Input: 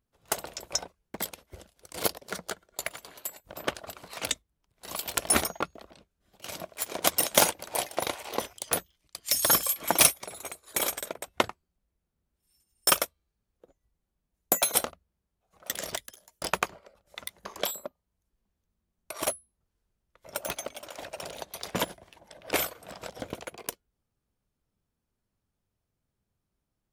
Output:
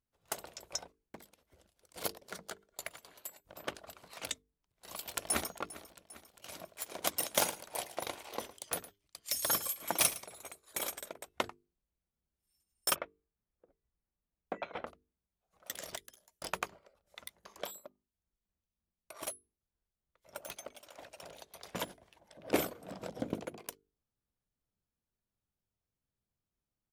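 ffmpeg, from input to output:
-filter_complex "[0:a]asettb=1/sr,asplit=3[s0][s1][s2];[s0]atrim=end=1.194[s3];[s1]atrim=start=1.19:end=1.96,asetpts=PTS-STARTPTS,afade=t=in:d=0.004:c=qsin,afade=t=out:st=0.766:d=0.004:c=qsin,acompressor=threshold=0.002:ratio=2.5:attack=3.2:release=140:knee=1:detection=peak[s4];[s2]atrim=start=1.956[s5];[s3][s4]acrossfade=d=0.004:c1=hsin:c2=qsin[s6];[s6][s5]acrossfade=d=0.004:c1=qsin:c2=hsin,asplit=2[s7][s8];[s8]afade=t=in:st=5.03:d=0.01,afade=t=out:st=5.5:d=0.01,aecho=0:1:400|800|1200|1600|2000|2400|2800:0.141254|0.0918149|0.0596797|0.0387918|0.0252147|0.0163895|0.0106532[s9];[s7][s9]amix=inputs=2:normalize=0,asettb=1/sr,asplit=3[s10][s11][s12];[s10]atrim=end=7.314[s13];[s11]atrim=start=7.31:end=10.43,asetpts=PTS-STARTPTS,afade=t=in:d=0.004:c=qsin,afade=t=out:st=3.116:d=0.004:c=qsin,aecho=1:1:110:0.15,atrim=end_sample=137592[s14];[s12]atrim=start=10.426[s15];[s13][s14]acrossfade=d=0.004:c1=hsin:c2=qsin[s16];[s16][s15]acrossfade=d=0.004:c1=qsin:c2=hsin,asplit=3[s17][s18][s19];[s17]afade=t=out:st=12.94:d=0.02[s20];[s18]lowpass=f=2400:w=0.5412,lowpass=f=2400:w=1.3066,afade=t=in:st=12.94:d=0.02,afade=t=out:st=14.86:d=0.02[s21];[s19]afade=t=in:st=14.86:d=0.02[s22];[s20][s21][s22]amix=inputs=3:normalize=0,asettb=1/sr,asplit=3[s23][s24][s25];[s23]atrim=end=17.354[s26];[s24]atrim=start=17.35:end=21.71,asetpts=PTS-STARTPTS,afade=t=in:d=0.004:c=qsin,afade=t=out:st=4.356:d=0.004:c=qsin,acrossover=split=2300[s27][s28];[s27]aeval=exprs='val(0)*(1-0.5/2+0.5/2*cos(2*PI*3.3*n/s))':c=same[s29];[s28]aeval=exprs='val(0)*(1-0.5/2-0.5/2*cos(2*PI*3.3*n/s))':c=same[s30];[s29][s30]amix=inputs=2:normalize=0[s31];[s25]atrim=start=21.706[s32];[s26][s31]acrossfade=d=0.004:c1=hsin:c2=qsin[s33];[s33][s32]acrossfade=d=0.004:c1=qsin:c2=hsin,asettb=1/sr,asplit=3[s34][s35][s36];[s34]atrim=end=22.374[s37];[s35]atrim=start=22.37:end=23.59,asetpts=PTS-STARTPTS,afade=t=in:d=0.004:c=qsin,afade=t=out:st=1.216:d=0.004:c=qsin,equalizer=f=230:w=0.48:g=15[s38];[s36]atrim=start=23.586[s39];[s37][s38]acrossfade=d=0.004:c1=hsin:c2=qsin[s40];[s40][s39]acrossfade=d=0.004:c1=qsin:c2=hsin,bandreject=f=50:t=h:w=6,bandreject=f=100:t=h:w=6,bandreject=f=150:t=h:w=6,bandreject=f=200:t=h:w=6,bandreject=f=250:t=h:w=6,bandreject=f=300:t=h:w=6,bandreject=f=350:t=h:w=6,bandreject=f=400:t=h:w=6,bandreject=f=450:t=h:w=6,volume=0.355"

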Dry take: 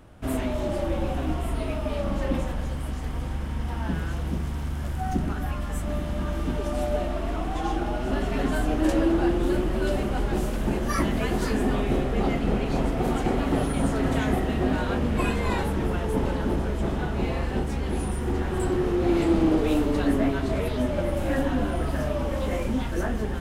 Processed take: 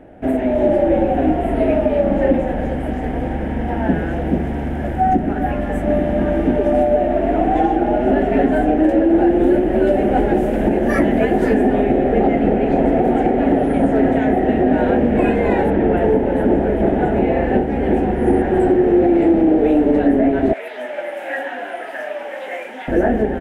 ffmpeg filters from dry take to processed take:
-filter_complex "[0:a]asettb=1/sr,asplit=3[s0][s1][s2];[s0]atrim=end=9.094[s3];[s1]atrim=start=9.09:end=11.84,asetpts=PTS-STARTPTS,afade=t=in:d=0.004:c=qsin,afade=t=out:st=2.746:d=0.004:c=qsin,highshelf=f=6300:g=5.5[s4];[s2]atrim=start=11.836[s5];[s3][s4]acrossfade=d=0.004:c1=hsin:c2=qsin[s6];[s6][s5]acrossfade=d=0.004:c1=qsin:c2=hsin,asettb=1/sr,asplit=3[s7][s8][s9];[s7]atrim=end=15.704[s10];[s8]atrim=start=15.7:end=18.42,asetpts=PTS-STARTPTS,afade=t=in:d=0.004:c=qsin,afade=t=out:st=2.716:d=0.004:c=qsin,acrossover=split=5400[s11][s12];[s12]adelay=270[s13];[s11][s13]amix=inputs=2:normalize=0,atrim=end_sample=119952[s14];[s9]atrim=start=18.416[s15];[s10][s14]acrossfade=d=0.004:c1=hsin:c2=qsin[s16];[s16][s15]acrossfade=d=0.004:c1=qsin:c2=hsin,asettb=1/sr,asplit=3[s17][s18][s19];[s17]atrim=end=20.534[s20];[s18]atrim=start=20.53:end=22.88,asetpts=PTS-STARTPTS,afade=t=in:d=0.004:c=qsin,afade=t=out:st=2.346:d=0.004:c=qsin,highpass=1300[s21];[s19]atrim=start=22.876[s22];[s20][s21]acrossfade=d=0.004:c1=hsin:c2=qsin[s23];[s23][s22]acrossfade=d=0.004:c1=qsin:c2=hsin,firequalizer=gain_entry='entry(110,0);entry(250,12);entry(760,14);entry(1100,-6);entry(1700,9);entry(4300,-12);entry(10000,-10)':delay=0.05:min_phase=1,alimiter=limit=0.335:level=0:latency=1:release=325,dynaudnorm=f=310:g=3:m=1.58"

